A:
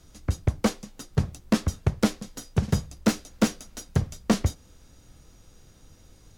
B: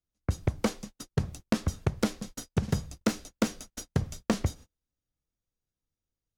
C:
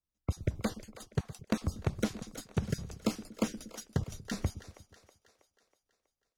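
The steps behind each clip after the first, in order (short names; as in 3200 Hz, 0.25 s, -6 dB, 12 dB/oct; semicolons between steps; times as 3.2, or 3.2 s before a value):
gate -40 dBFS, range -37 dB; compressor, threshold -22 dBFS, peak gain reduction 7.5 dB
random spectral dropouts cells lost 21%; split-band echo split 400 Hz, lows 0.118 s, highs 0.322 s, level -14 dB; gain -4 dB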